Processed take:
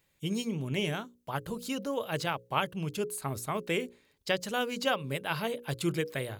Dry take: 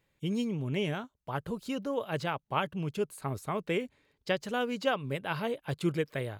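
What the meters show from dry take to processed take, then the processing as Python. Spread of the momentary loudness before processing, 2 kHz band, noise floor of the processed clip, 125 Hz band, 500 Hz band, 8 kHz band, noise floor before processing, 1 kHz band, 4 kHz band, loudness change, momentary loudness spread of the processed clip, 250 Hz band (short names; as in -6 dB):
6 LU, +2.0 dB, -72 dBFS, -0.5 dB, -0.5 dB, +9.0 dB, -78 dBFS, +0.5 dB, +4.0 dB, +0.5 dB, 6 LU, -1.0 dB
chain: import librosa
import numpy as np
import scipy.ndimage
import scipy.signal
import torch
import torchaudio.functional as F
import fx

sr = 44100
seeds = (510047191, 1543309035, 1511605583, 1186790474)

y = fx.high_shelf(x, sr, hz=4100.0, db=11.0)
y = fx.hum_notches(y, sr, base_hz=60, count=9)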